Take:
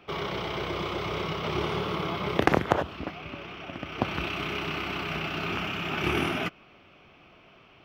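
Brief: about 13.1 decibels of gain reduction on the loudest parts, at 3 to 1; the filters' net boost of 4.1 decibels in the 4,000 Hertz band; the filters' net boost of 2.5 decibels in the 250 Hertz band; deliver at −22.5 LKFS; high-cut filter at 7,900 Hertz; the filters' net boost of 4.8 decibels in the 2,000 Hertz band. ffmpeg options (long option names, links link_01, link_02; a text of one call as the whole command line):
ffmpeg -i in.wav -af "lowpass=7900,equalizer=frequency=250:width_type=o:gain=3.5,equalizer=frequency=2000:width_type=o:gain=5,equalizer=frequency=4000:width_type=o:gain=3.5,acompressor=threshold=-33dB:ratio=3,volume=11.5dB" out.wav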